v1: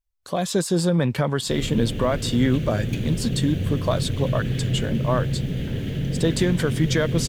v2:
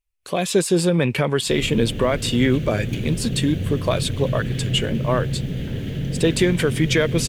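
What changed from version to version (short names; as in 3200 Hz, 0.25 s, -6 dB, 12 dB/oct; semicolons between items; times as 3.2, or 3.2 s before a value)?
speech: add fifteen-band EQ 400 Hz +6 dB, 2500 Hz +12 dB, 10000 Hz +6 dB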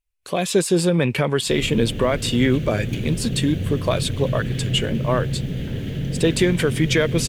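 none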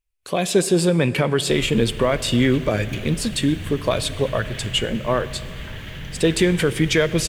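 speech: send on; background: add ten-band EQ 125 Hz -9 dB, 250 Hz -11 dB, 500 Hz -11 dB, 1000 Hz +9 dB, 2000 Hz +4 dB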